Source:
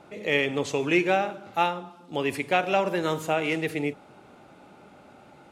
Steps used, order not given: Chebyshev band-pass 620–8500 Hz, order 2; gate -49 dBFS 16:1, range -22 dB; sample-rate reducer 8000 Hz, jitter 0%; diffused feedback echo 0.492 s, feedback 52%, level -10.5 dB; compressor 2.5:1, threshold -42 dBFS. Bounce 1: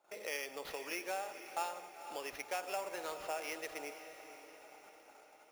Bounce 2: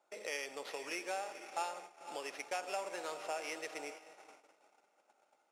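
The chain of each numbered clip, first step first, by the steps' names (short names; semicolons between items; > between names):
compressor > gate > Chebyshev band-pass > sample-rate reducer > diffused feedback echo; compressor > diffused feedback echo > sample-rate reducer > Chebyshev band-pass > gate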